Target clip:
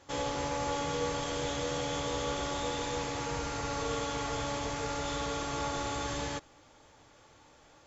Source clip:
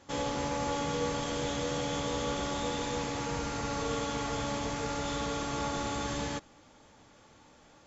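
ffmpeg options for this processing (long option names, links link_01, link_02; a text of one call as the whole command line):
ffmpeg -i in.wav -af "equalizer=frequency=210:width=2.7:gain=-10" out.wav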